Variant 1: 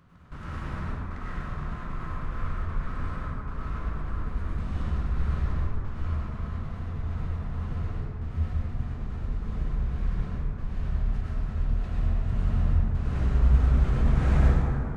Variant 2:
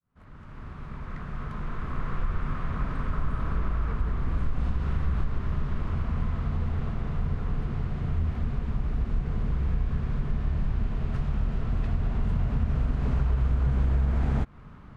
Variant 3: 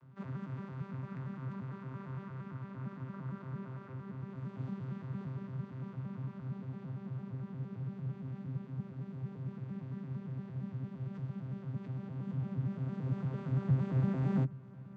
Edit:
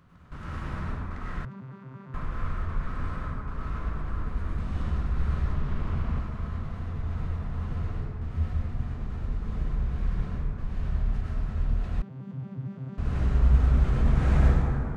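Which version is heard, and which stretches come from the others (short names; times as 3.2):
1
1.45–2.14 from 3
5.55–6.19 from 2
12.02–12.98 from 3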